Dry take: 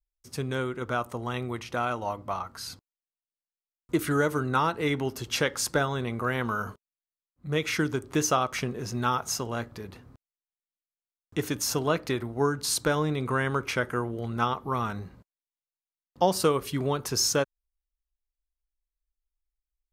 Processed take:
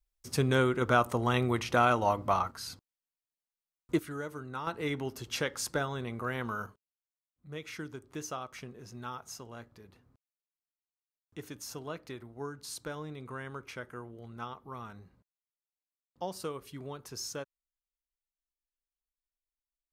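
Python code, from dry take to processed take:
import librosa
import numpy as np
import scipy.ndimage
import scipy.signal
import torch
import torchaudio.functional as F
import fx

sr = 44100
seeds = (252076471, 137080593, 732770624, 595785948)

y = fx.gain(x, sr, db=fx.steps((0.0, 4.0), (2.51, -3.0), (3.99, -14.0), (4.67, -6.5), (6.66, -14.5)))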